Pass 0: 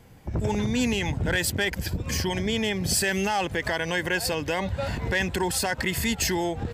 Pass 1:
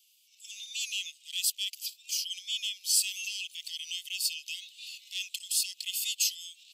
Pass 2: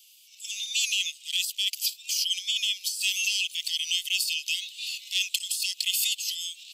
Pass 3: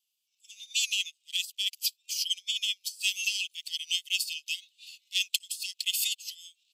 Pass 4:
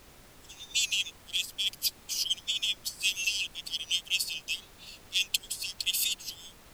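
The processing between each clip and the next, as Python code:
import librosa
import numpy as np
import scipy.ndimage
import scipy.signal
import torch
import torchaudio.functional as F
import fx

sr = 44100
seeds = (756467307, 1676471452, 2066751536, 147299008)

y1 = fx.wow_flutter(x, sr, seeds[0], rate_hz=2.1, depth_cents=22.0)
y1 = scipy.signal.sosfilt(scipy.signal.butter(12, 2700.0, 'highpass', fs=sr, output='sos'), y1)
y2 = fx.over_compress(y1, sr, threshold_db=-34.0, ratio=-1.0)
y2 = y2 * librosa.db_to_amplitude(7.5)
y3 = fx.upward_expand(y2, sr, threshold_db=-41.0, expansion=2.5)
y4 = fx.dmg_noise_colour(y3, sr, seeds[1], colour='pink', level_db=-54.0)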